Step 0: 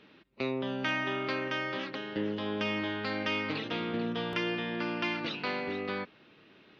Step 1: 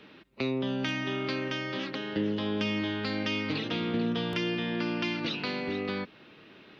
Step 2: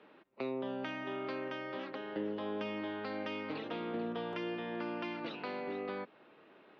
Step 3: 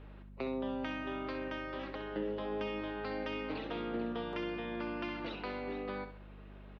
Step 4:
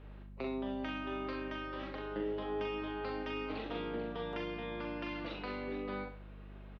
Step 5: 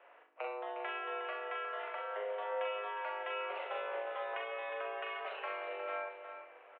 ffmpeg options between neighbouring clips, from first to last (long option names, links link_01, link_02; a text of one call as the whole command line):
ffmpeg -i in.wav -filter_complex "[0:a]acrossover=split=360|3000[link_01][link_02][link_03];[link_02]acompressor=threshold=-42dB:ratio=6[link_04];[link_01][link_04][link_03]amix=inputs=3:normalize=0,volume=5.5dB" out.wav
ffmpeg -i in.wav -af "bandpass=frequency=730:width_type=q:width=0.98:csg=0,volume=-1.5dB" out.wav
ffmpeg -i in.wav -af "aeval=exprs='val(0)+0.00316*(sin(2*PI*50*n/s)+sin(2*PI*2*50*n/s)/2+sin(2*PI*3*50*n/s)/3+sin(2*PI*4*50*n/s)/4+sin(2*PI*5*50*n/s)/5)':channel_layout=same,aecho=1:1:65|130|195|260:0.335|0.114|0.0387|0.0132" out.wav
ffmpeg -i in.wav -filter_complex "[0:a]asplit=2[link_01][link_02];[link_02]adelay=41,volume=-4.5dB[link_03];[link_01][link_03]amix=inputs=2:normalize=0,volume=-2dB" out.wav
ffmpeg -i in.wav -af "highpass=frequency=450:width_type=q:width=0.5412,highpass=frequency=450:width_type=q:width=1.307,lowpass=frequency=2700:width_type=q:width=0.5176,lowpass=frequency=2700:width_type=q:width=0.7071,lowpass=frequency=2700:width_type=q:width=1.932,afreqshift=100,aecho=1:1:359|846:0.355|0.106,volume=3dB" out.wav